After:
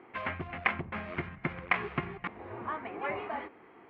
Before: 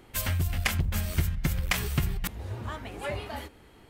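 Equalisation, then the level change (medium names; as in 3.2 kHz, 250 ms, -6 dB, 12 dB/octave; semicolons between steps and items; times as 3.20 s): distance through air 110 m; cabinet simulation 240–2400 Hz, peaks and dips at 360 Hz +4 dB, 710 Hz +4 dB, 1.1 kHz +7 dB, 2.2 kHz +5 dB; band-stop 590 Hz, Q 14; 0.0 dB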